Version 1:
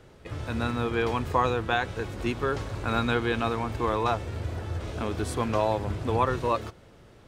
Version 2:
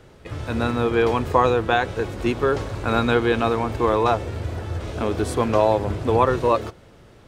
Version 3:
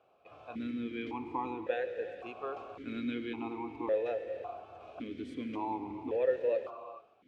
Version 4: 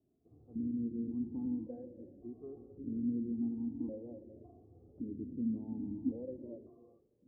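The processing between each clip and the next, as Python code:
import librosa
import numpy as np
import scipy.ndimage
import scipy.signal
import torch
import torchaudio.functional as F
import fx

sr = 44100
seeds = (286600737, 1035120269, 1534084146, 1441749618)

y1 = fx.dynamic_eq(x, sr, hz=470.0, q=0.82, threshold_db=-38.0, ratio=4.0, max_db=5)
y1 = y1 * 10.0 ** (4.0 / 20.0)
y2 = fx.rev_gated(y1, sr, seeds[0], gate_ms=470, shape='flat', drr_db=9.5)
y2 = fx.vowel_held(y2, sr, hz=1.8)
y2 = y2 * 10.0 ** (-4.5 / 20.0)
y3 = fx.ladder_lowpass(y2, sr, hz=290.0, resonance_pct=50)
y3 = y3 + 10.0 ** (-21.0 / 20.0) * np.pad(y3, (int(330 * sr / 1000.0), 0))[:len(y3)]
y3 = fx.comb_cascade(y3, sr, direction='rising', hz=0.46)
y3 = y3 * 10.0 ** (15.0 / 20.0)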